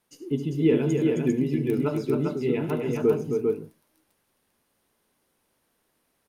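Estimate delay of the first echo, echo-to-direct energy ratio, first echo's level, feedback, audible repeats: 72 ms, -1.0 dB, -14.5 dB, no regular repeats, 3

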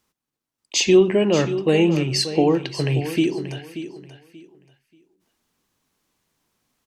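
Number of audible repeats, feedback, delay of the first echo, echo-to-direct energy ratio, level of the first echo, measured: 2, 23%, 583 ms, -12.0 dB, -12.0 dB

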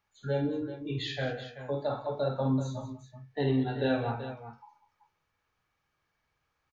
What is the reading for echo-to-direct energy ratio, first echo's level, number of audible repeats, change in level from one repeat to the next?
-4.5 dB, -7.0 dB, 4, no regular repeats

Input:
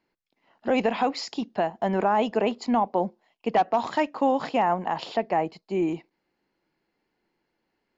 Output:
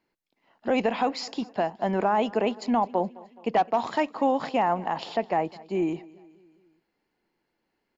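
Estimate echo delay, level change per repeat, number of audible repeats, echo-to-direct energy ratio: 211 ms, -5.5 dB, 3, -20.5 dB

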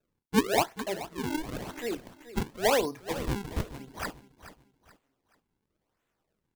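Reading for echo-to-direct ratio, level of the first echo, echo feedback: -14.0 dB, -14.5 dB, 33%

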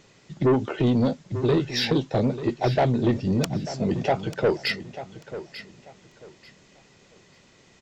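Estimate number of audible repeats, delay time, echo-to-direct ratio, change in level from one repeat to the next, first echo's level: 2, 891 ms, -13.0 dB, -12.0 dB, -13.5 dB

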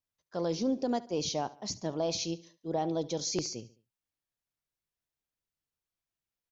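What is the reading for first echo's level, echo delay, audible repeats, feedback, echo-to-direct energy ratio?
-19.0 dB, 71 ms, 3, 43%, -18.0 dB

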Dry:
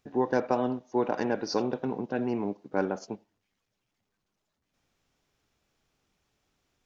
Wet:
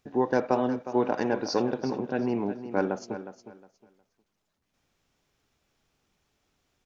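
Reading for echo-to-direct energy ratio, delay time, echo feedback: -12.0 dB, 361 ms, 23%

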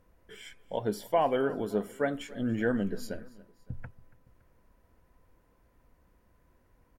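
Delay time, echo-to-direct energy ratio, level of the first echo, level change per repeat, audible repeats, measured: 282 ms, -20.0 dB, -21.0 dB, -5.5 dB, 2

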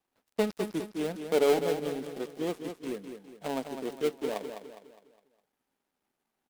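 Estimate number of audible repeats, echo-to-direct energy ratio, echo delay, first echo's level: 4, -7.0 dB, 205 ms, -8.0 dB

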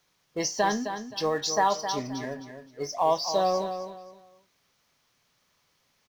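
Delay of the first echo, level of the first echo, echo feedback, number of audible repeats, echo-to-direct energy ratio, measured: 262 ms, -9.0 dB, 27%, 3, -8.5 dB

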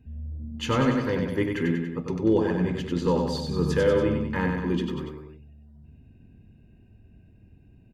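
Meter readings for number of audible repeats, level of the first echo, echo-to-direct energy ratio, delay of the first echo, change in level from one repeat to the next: 3, -4.5 dB, -3.0 dB, 95 ms, -4.5 dB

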